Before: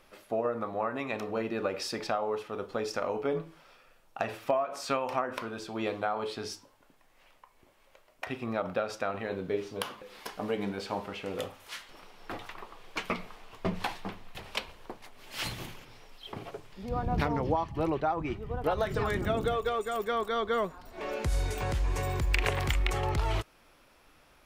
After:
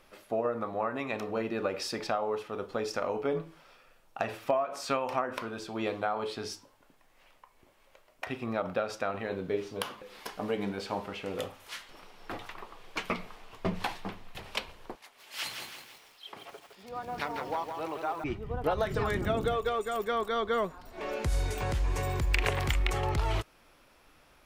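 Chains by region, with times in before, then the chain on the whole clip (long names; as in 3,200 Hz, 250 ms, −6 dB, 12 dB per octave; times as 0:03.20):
0:14.95–0:18.24: high-pass filter 1,000 Hz 6 dB per octave + feedback echo at a low word length 162 ms, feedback 55%, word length 9 bits, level −6 dB
whole clip: no processing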